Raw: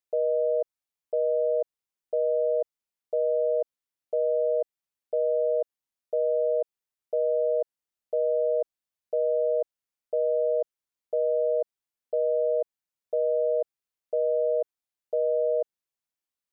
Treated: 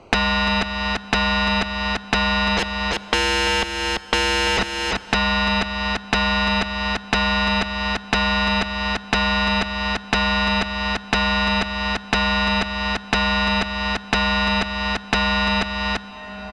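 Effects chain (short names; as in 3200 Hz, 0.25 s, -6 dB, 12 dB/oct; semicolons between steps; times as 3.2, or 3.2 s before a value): Wiener smoothing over 25 samples; 2.58–4.58 HPF 630 Hz 24 dB/oct; negative-ratio compressor -31 dBFS, ratio -0.5; sample leveller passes 2; sine folder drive 19 dB, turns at -18 dBFS; air absorption 130 m; echo 0.34 s -9.5 dB; plate-style reverb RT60 2.4 s, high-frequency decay 0.75×, DRR 19.5 dB; three-band squash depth 100%; gain +3.5 dB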